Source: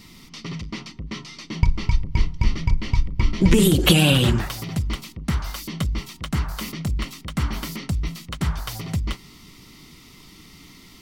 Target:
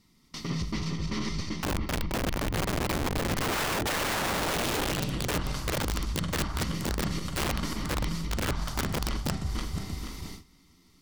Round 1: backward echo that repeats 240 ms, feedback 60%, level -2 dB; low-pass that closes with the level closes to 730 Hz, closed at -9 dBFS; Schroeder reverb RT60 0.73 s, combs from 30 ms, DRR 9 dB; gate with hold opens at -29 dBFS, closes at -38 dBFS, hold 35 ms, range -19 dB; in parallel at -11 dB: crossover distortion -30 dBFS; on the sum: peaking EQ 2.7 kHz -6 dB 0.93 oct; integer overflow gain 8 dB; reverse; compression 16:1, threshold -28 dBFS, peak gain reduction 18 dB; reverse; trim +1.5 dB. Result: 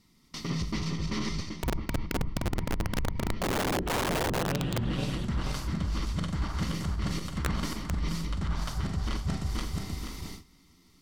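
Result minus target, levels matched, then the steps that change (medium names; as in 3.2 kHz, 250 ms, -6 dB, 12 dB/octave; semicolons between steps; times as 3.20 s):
integer overflow: distortion -9 dB
change: integer overflow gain 15 dB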